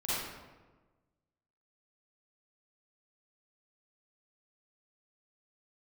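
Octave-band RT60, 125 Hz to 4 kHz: 1.6 s, 1.5 s, 1.4 s, 1.2 s, 1.0 s, 0.75 s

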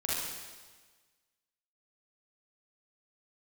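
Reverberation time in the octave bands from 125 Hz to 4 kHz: 1.5 s, 1.4 s, 1.4 s, 1.4 s, 1.4 s, 1.4 s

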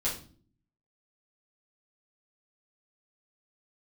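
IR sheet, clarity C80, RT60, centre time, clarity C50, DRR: 13.0 dB, no single decay rate, 27 ms, 7.0 dB, -7.0 dB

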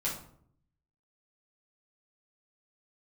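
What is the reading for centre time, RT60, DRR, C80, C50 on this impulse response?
31 ms, 0.60 s, -6.5 dB, 10.5 dB, 6.0 dB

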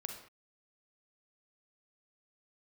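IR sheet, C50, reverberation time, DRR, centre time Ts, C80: 5.0 dB, no single decay rate, 3.5 dB, 26 ms, 8.5 dB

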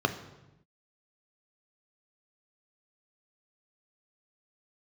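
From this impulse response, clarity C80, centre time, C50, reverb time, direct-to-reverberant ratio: 14.0 dB, 11 ms, 12.0 dB, 0.95 s, 6.5 dB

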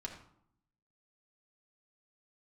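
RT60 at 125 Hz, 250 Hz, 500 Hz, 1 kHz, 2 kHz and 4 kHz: 0.95 s, 0.95 s, 0.65 s, 0.70 s, 0.50 s, 0.45 s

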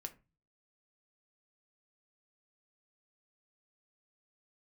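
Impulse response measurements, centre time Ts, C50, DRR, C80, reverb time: 5 ms, 17.0 dB, 6.5 dB, 23.0 dB, 0.30 s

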